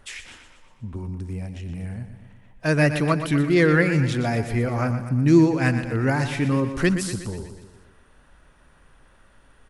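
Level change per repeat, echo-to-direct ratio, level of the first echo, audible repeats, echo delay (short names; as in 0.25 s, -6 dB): -5.0 dB, -8.5 dB, -10.0 dB, 5, 0.121 s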